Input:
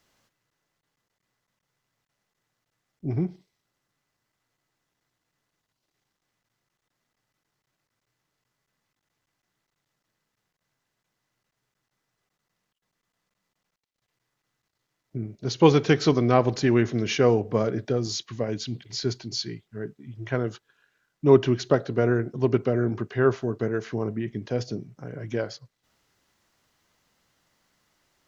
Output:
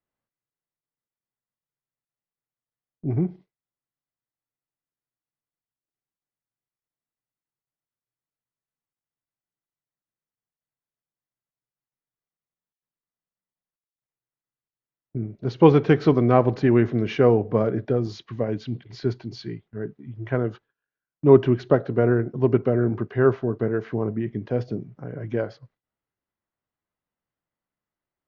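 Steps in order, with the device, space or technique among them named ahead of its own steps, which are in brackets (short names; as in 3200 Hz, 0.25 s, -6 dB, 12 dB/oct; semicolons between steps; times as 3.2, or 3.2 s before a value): phone in a pocket (LPF 3400 Hz 12 dB/oct; high shelf 2500 Hz -11 dB); gate with hold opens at -43 dBFS; gain +3 dB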